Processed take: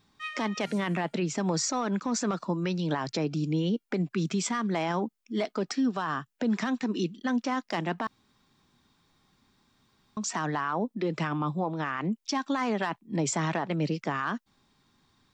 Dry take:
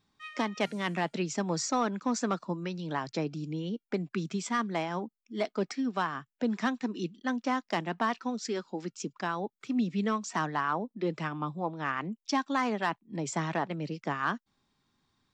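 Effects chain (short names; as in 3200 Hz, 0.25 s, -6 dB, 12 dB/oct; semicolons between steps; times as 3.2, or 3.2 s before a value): 5.63–6.31 bell 2200 Hz -9 dB 0.23 oct; limiter -27.5 dBFS, peak gain reduction 11.5 dB; 0.78–1.38 bell 5700 Hz -6.5 dB 1.4 oct; 8.07–10.17 room tone; gain +7.5 dB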